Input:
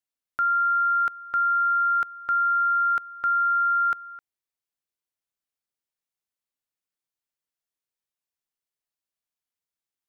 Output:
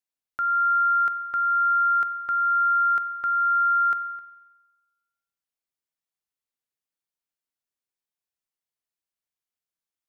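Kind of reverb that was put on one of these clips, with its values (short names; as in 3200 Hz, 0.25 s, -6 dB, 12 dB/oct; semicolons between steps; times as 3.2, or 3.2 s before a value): spring tank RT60 1.2 s, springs 44 ms, chirp 65 ms, DRR 11 dB; gain -2.5 dB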